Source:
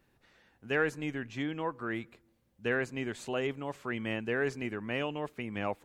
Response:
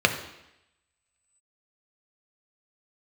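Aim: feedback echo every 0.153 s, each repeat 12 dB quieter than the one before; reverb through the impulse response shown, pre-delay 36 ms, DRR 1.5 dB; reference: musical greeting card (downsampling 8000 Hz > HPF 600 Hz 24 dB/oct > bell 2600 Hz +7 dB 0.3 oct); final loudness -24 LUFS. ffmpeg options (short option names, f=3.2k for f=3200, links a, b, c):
-filter_complex "[0:a]aecho=1:1:153|306|459:0.251|0.0628|0.0157,asplit=2[a][b];[1:a]atrim=start_sample=2205,adelay=36[c];[b][c]afir=irnorm=-1:irlink=0,volume=-18.5dB[d];[a][d]amix=inputs=2:normalize=0,aresample=8000,aresample=44100,highpass=f=600:w=0.5412,highpass=f=600:w=1.3066,equalizer=f=2.6k:t=o:w=0.3:g=7,volume=9.5dB"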